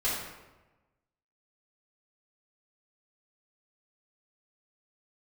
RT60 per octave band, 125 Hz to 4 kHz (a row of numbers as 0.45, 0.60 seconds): 1.3, 1.2, 1.2, 1.1, 0.95, 0.70 seconds